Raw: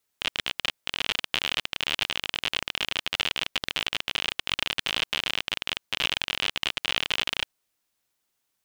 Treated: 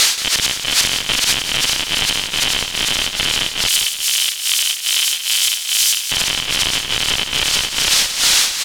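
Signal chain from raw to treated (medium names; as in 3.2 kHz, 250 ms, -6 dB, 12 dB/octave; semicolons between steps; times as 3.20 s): zero-crossing glitches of -14.5 dBFS; Chebyshev low-pass 4.2 kHz, order 2; feedback delay 453 ms, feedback 30%, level -5 dB; tremolo 2.4 Hz, depth 94%; 3.68–6.11 s: differentiator; compression 2.5:1, threshold -30 dBFS, peak gain reduction 7 dB; bass shelf 300 Hz +8.5 dB; loudness maximiser +24 dB; bit-crushed delay 177 ms, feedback 35%, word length 6-bit, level -10 dB; trim -1.5 dB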